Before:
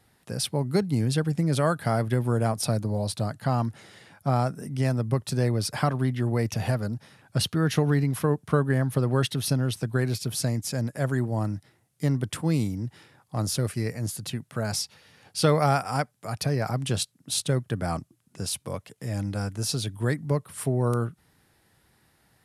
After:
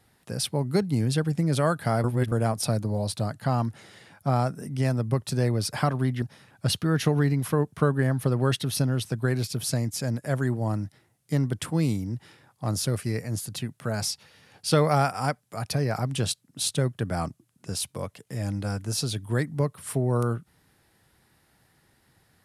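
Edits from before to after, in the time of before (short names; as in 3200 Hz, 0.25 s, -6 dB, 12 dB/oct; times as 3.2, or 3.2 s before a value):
2.04–2.32 reverse
6.22–6.93 cut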